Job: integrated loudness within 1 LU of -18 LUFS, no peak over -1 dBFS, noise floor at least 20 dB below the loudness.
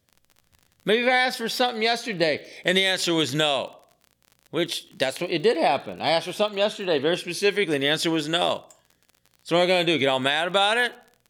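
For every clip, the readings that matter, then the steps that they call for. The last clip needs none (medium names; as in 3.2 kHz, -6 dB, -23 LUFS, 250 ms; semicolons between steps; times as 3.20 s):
tick rate 47 per s; loudness -23.0 LUFS; peak level -6.5 dBFS; loudness target -18.0 LUFS
-> de-click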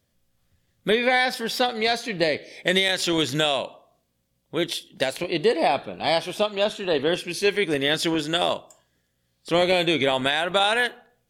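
tick rate 0 per s; loudness -23.0 LUFS; peak level -6.5 dBFS; loudness target -18.0 LUFS
-> trim +5 dB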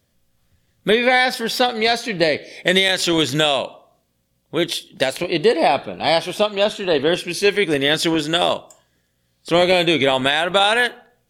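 loudness -18.0 LUFS; peak level -1.5 dBFS; noise floor -67 dBFS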